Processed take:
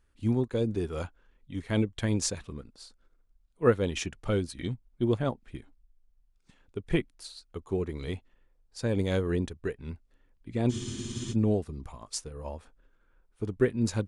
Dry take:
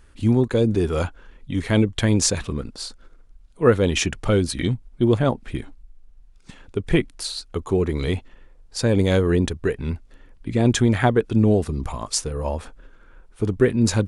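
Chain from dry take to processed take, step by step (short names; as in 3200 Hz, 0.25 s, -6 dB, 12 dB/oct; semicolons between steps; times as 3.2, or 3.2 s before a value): spectral freeze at 10.73, 0.60 s; upward expander 1.5:1, over -33 dBFS; gain -6 dB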